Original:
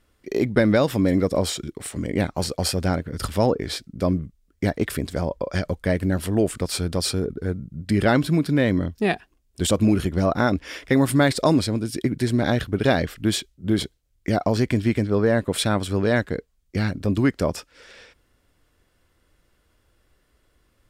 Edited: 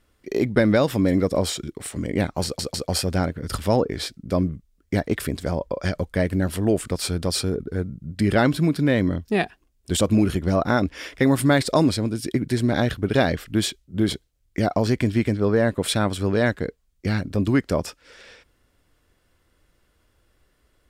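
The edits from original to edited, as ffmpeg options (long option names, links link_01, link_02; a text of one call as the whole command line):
ffmpeg -i in.wav -filter_complex "[0:a]asplit=3[link_01][link_02][link_03];[link_01]atrim=end=2.592[link_04];[link_02]atrim=start=2.438:end=2.592[link_05];[link_03]atrim=start=2.438[link_06];[link_04][link_05]acrossfade=duration=0.004:curve1=hsin:curve2=hsin[link_07];[link_07][link_06]acrossfade=duration=0.004:curve1=hsin:curve2=hsin" out.wav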